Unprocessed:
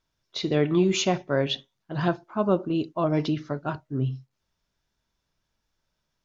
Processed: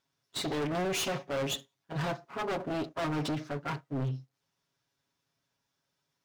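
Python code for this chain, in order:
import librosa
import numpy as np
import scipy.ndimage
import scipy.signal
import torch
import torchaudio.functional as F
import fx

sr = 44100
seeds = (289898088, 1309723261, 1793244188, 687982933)

y = fx.lower_of_two(x, sr, delay_ms=7.2)
y = scipy.signal.sosfilt(scipy.signal.butter(2, 110.0, 'highpass', fs=sr, output='sos'), y)
y = np.clip(10.0 ** (29.0 / 20.0) * y, -1.0, 1.0) / 10.0 ** (29.0 / 20.0)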